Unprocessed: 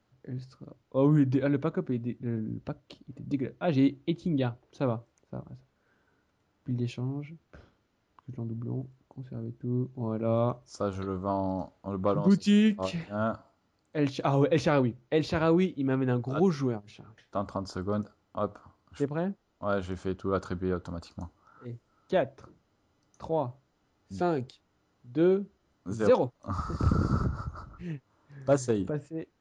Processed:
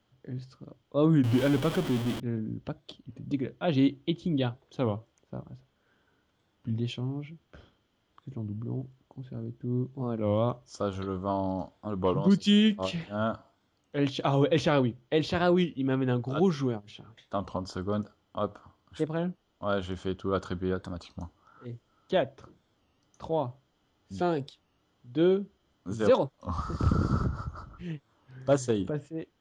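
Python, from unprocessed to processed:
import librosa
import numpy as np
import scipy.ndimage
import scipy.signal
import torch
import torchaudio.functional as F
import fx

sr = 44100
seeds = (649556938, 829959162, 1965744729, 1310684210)

y = fx.zero_step(x, sr, step_db=-30.0, at=(1.25, 2.2))
y = fx.peak_eq(y, sr, hz=3200.0, db=11.0, octaves=0.24)
y = fx.record_warp(y, sr, rpm=33.33, depth_cents=160.0)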